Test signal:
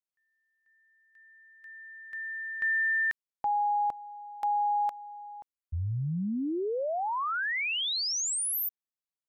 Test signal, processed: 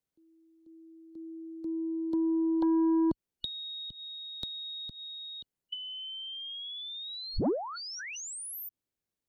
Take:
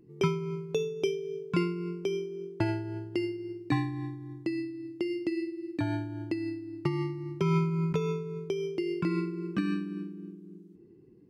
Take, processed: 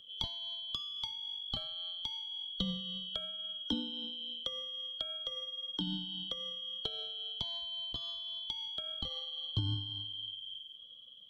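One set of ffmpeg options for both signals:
-filter_complex "[0:a]afftfilt=real='real(if(lt(b,272),68*(eq(floor(b/68),0)*1+eq(floor(b/68),1)*3+eq(floor(b/68),2)*0+eq(floor(b/68),3)*2)+mod(b,68),b),0)':imag='imag(if(lt(b,272),68*(eq(floor(b/68),0)*1+eq(floor(b/68),1)*3+eq(floor(b/68),2)*0+eq(floor(b/68),3)*2)+mod(b,68),b),0)':win_size=2048:overlap=0.75,acrossover=split=230[s0][s1];[s1]acompressor=threshold=0.00708:ratio=10:attack=35:release=168:knee=2.83:detection=peak[s2];[s0][s2]amix=inputs=2:normalize=0,acrossover=split=490|2900[s3][s4][s5];[s3]aeval=exprs='0.0501*sin(PI/2*2.82*val(0)/0.0501)':c=same[s6];[s6][s4][s5]amix=inputs=3:normalize=0,aeval=exprs='0.224*(cos(1*acos(clip(val(0)/0.224,-1,1)))-cos(1*PI/2))+0.01*(cos(2*acos(clip(val(0)/0.224,-1,1)))-cos(2*PI/2))+0.0141*(cos(5*acos(clip(val(0)/0.224,-1,1)))-cos(5*PI/2))':c=same"

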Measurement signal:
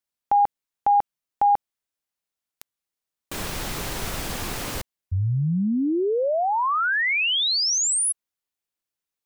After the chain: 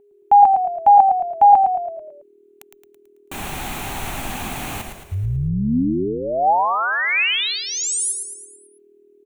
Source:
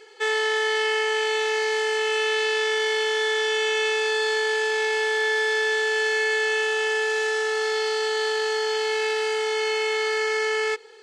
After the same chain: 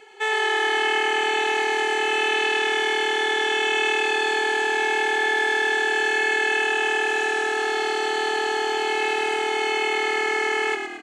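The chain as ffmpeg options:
-filter_complex "[0:a]aeval=exprs='val(0)+0.00316*sin(2*PI*410*n/s)':c=same,equalizer=f=250:t=o:w=0.33:g=5,equalizer=f=500:t=o:w=0.33:g=-8,equalizer=f=800:t=o:w=0.33:g=9,equalizer=f=2500:t=o:w=0.33:g=5,equalizer=f=5000:t=o:w=0.33:g=-12,asplit=7[s0][s1][s2][s3][s4][s5][s6];[s1]adelay=110,afreqshift=-39,volume=0.501[s7];[s2]adelay=220,afreqshift=-78,volume=0.257[s8];[s3]adelay=330,afreqshift=-117,volume=0.13[s9];[s4]adelay=440,afreqshift=-156,volume=0.0668[s10];[s5]adelay=550,afreqshift=-195,volume=0.0339[s11];[s6]adelay=660,afreqshift=-234,volume=0.0174[s12];[s0][s7][s8][s9][s10][s11][s12]amix=inputs=7:normalize=0"

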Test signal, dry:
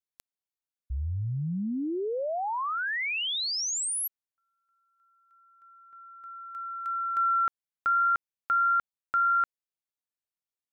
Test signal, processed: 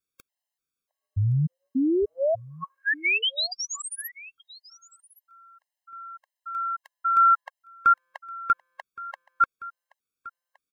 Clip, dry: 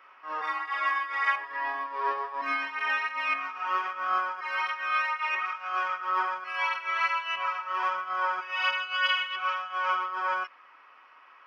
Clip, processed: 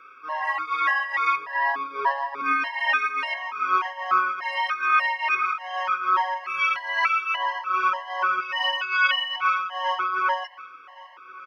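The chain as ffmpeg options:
-filter_complex "[0:a]acrossover=split=3900[s0][s1];[s1]acompressor=threshold=0.00708:ratio=4:attack=1:release=60[s2];[s0][s2]amix=inputs=2:normalize=0,aecho=1:1:1118:0.0944,afftfilt=real='re*gt(sin(2*PI*1.7*pts/sr)*(1-2*mod(floor(b*sr/1024/540),2)),0)':imag='im*gt(sin(2*PI*1.7*pts/sr)*(1-2*mod(floor(b*sr/1024/540),2)),0)':win_size=1024:overlap=0.75,volume=2.66"

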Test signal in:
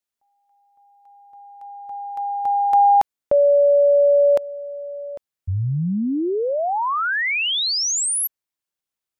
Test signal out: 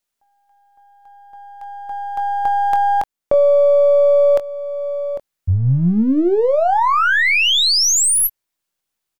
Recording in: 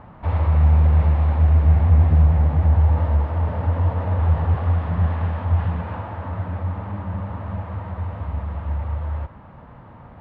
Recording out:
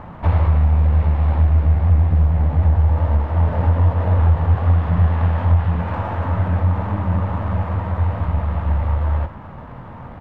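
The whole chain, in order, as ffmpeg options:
-filter_complex "[0:a]aeval=exprs='if(lt(val(0),0),0.708*val(0),val(0))':c=same,acompressor=threshold=0.1:ratio=4:attack=11:release=994:knee=1:detection=rms,asplit=2[s0][s1];[s1]adelay=23,volume=0.299[s2];[s0][s2]amix=inputs=2:normalize=0,volume=2.66"

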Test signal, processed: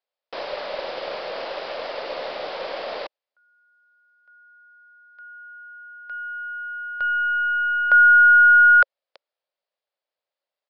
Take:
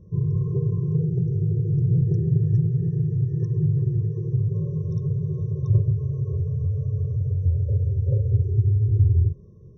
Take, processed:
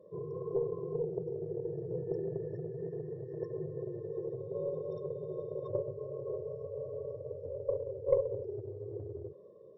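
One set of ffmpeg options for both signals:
-af "highpass=f=560:t=q:w=4.9,aeval=exprs='0.422*(cos(1*acos(clip(val(0)/0.422,-1,1)))-cos(1*PI/2))+0.00596*(cos(4*acos(clip(val(0)/0.422,-1,1)))-cos(4*PI/2))+0.00596*(cos(8*acos(clip(val(0)/0.422,-1,1)))-cos(8*PI/2))':c=same,aresample=11025,aresample=44100"

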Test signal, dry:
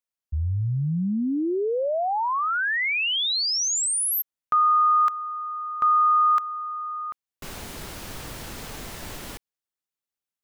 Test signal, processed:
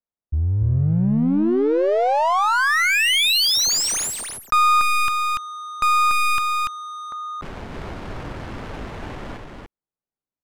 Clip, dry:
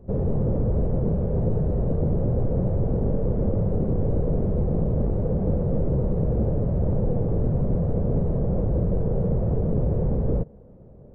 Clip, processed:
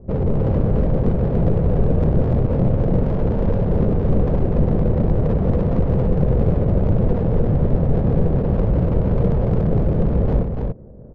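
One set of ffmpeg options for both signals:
-af "aeval=exprs='clip(val(0),-1,0.0668)':c=same,adynamicsmooth=sensitivity=6.5:basefreq=980,aecho=1:1:289:0.631,volume=1.88"

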